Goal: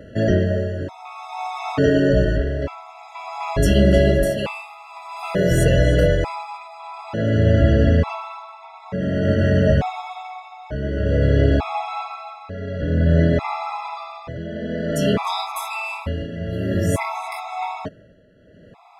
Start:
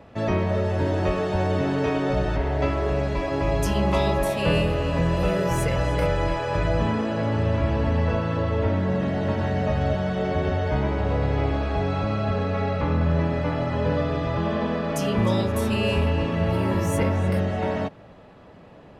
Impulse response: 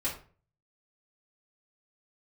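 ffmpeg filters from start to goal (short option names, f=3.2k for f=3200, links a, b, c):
-af "tremolo=f=0.52:d=0.79,afftfilt=real='re*gt(sin(2*PI*0.56*pts/sr)*(1-2*mod(floor(b*sr/1024/670),2)),0)':imag='im*gt(sin(2*PI*0.56*pts/sr)*(1-2*mod(floor(b*sr/1024/670),2)),0)':win_size=1024:overlap=0.75,volume=8.5dB"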